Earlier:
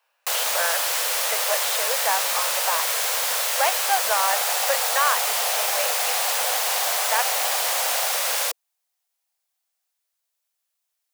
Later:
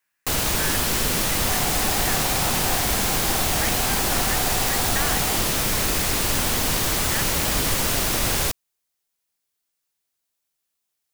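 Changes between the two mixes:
speech: add resonant band-pass 1,900 Hz, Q 4.5
second sound: entry −2.75 s
master: remove Butterworth high-pass 490 Hz 72 dB per octave

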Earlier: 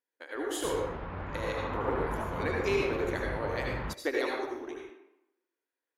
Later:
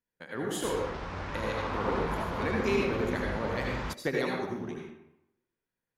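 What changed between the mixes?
speech: remove linear-phase brick-wall high-pass 260 Hz
background: remove high-frequency loss of the air 450 metres

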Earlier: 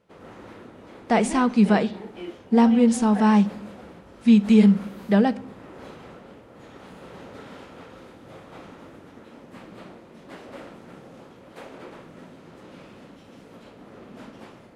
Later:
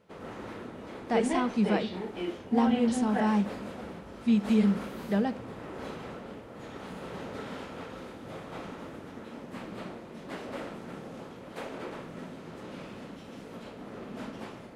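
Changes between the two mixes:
speech −9.0 dB
background: send on

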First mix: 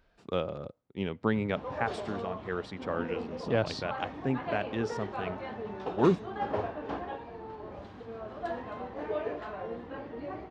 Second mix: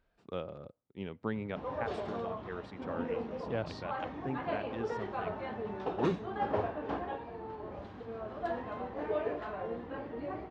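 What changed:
speech −7.5 dB
master: add high-shelf EQ 4,700 Hz −7 dB

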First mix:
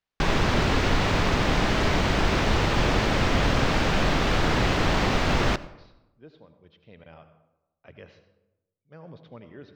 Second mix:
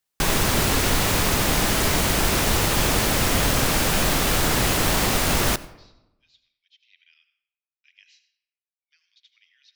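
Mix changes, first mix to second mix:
speech: add Butterworth high-pass 2,200 Hz 36 dB per octave
master: remove high-frequency loss of the air 180 metres

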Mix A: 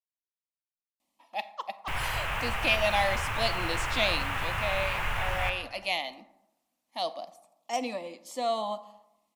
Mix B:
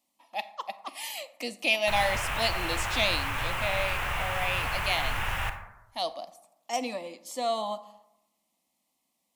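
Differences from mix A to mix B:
speech: entry −1.00 s
master: add high-shelf EQ 5,500 Hz +5.5 dB

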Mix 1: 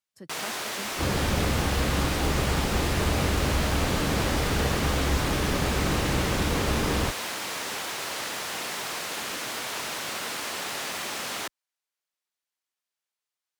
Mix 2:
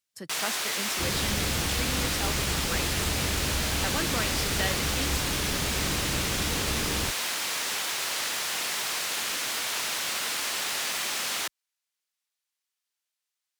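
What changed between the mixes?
speech +8.0 dB
second sound: add parametric band 1,900 Hz −14 dB 2.1 octaves
master: add tilt shelving filter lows −5 dB, about 1,300 Hz

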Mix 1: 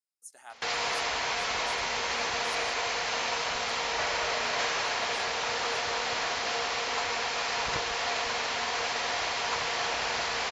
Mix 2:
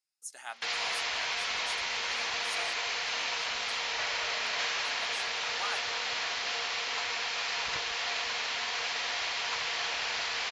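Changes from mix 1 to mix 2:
background −10.5 dB
master: add parametric band 3,200 Hz +11 dB 2.8 octaves

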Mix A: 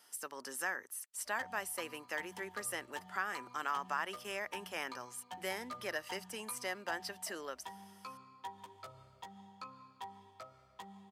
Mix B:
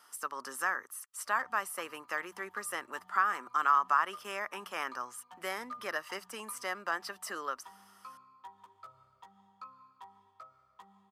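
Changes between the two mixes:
background −10.5 dB
master: add parametric band 1,200 Hz +14 dB 0.63 octaves

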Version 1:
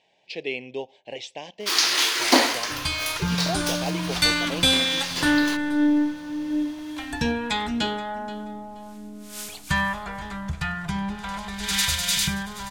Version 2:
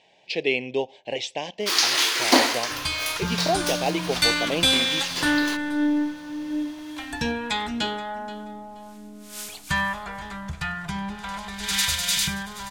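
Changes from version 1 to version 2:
speech +6.5 dB
second sound: add low-shelf EQ 380 Hz −4 dB

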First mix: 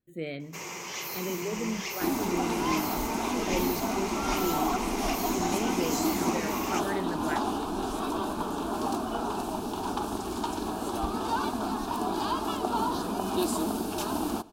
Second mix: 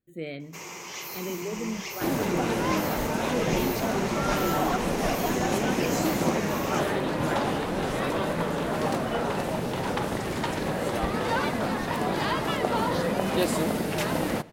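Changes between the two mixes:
first sound: send off
second sound: remove phaser with its sweep stopped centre 530 Hz, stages 6

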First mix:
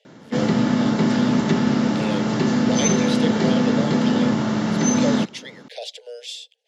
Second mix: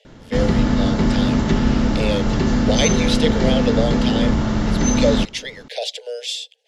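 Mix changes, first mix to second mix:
speech +7.5 dB
background: remove high-pass filter 140 Hz 24 dB per octave

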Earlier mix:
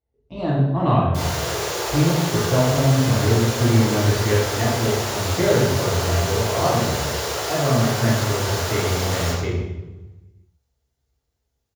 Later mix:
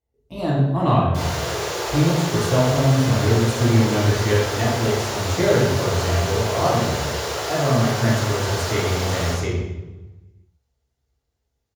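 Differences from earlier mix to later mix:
speech: remove high-frequency loss of the air 170 metres
master: add high-shelf EQ 8,700 Hz −7 dB

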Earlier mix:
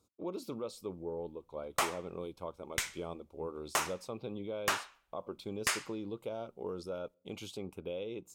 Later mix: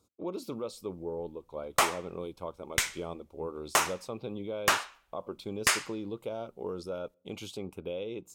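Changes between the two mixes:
speech +3.0 dB
background +6.5 dB

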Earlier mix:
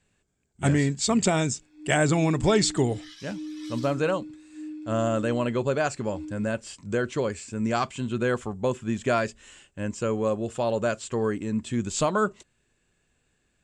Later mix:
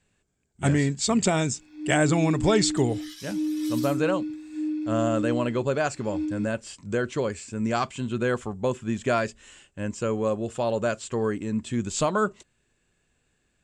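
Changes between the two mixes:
first sound +9.0 dB
second sound: remove high-frequency loss of the air 92 metres

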